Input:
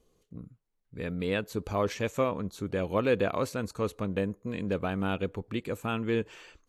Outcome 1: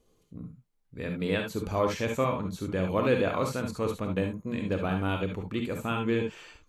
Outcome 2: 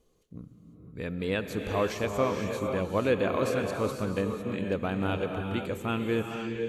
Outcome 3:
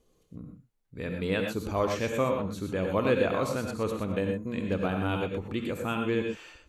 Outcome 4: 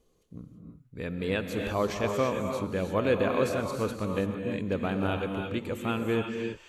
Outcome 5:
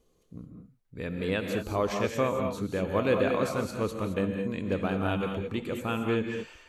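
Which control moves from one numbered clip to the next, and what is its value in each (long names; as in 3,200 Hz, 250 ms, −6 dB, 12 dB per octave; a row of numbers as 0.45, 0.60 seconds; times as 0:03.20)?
reverb whose tail is shaped and stops, gate: 90, 530, 140, 360, 240 milliseconds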